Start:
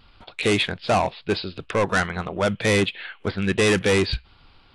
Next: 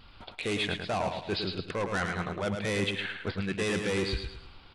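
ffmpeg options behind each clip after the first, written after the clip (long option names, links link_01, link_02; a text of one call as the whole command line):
ffmpeg -i in.wav -af "areverse,acompressor=threshold=-30dB:ratio=5,areverse,aecho=1:1:108|216|324|432|540:0.501|0.19|0.0724|0.0275|0.0105" out.wav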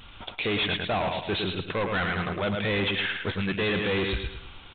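ffmpeg -i in.wav -af "aemphasis=mode=production:type=75kf,aresample=8000,asoftclip=type=hard:threshold=-28.5dB,aresample=44100,volume=5dB" out.wav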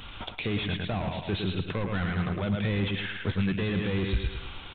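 ffmpeg -i in.wav -filter_complex "[0:a]acrossover=split=240[link_01][link_02];[link_02]acompressor=threshold=-41dB:ratio=3[link_03];[link_01][link_03]amix=inputs=2:normalize=0,volume=4.5dB" out.wav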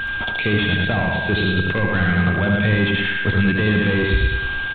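ffmpeg -i in.wav -af "aecho=1:1:75:0.631,aeval=exprs='val(0)+0.0282*sin(2*PI*1600*n/s)':channel_layout=same,volume=8.5dB" out.wav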